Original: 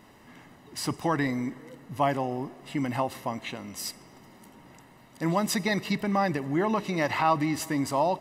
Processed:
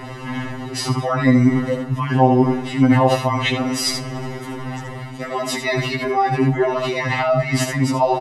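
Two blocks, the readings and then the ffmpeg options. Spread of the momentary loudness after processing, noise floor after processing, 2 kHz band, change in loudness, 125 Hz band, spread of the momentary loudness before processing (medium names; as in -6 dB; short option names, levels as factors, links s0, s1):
14 LU, -32 dBFS, +9.5 dB, +9.5 dB, +14.0 dB, 11 LU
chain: -filter_complex "[0:a]aphaser=in_gain=1:out_gain=1:delay=3.1:decay=0.23:speed=0.55:type=triangular,areverse,acompressor=threshold=0.0224:ratio=10,areverse,lowpass=f=12000:w=0.5412,lowpass=f=12000:w=1.3066,highshelf=f=5600:g=-11.5,asplit=2[s0][s1];[s1]aecho=0:1:75:0.422[s2];[s0][s2]amix=inputs=2:normalize=0,alimiter=level_in=29.9:limit=0.891:release=50:level=0:latency=1,afftfilt=real='re*2.45*eq(mod(b,6),0)':imag='im*2.45*eq(mod(b,6),0)':win_size=2048:overlap=0.75,volume=0.531"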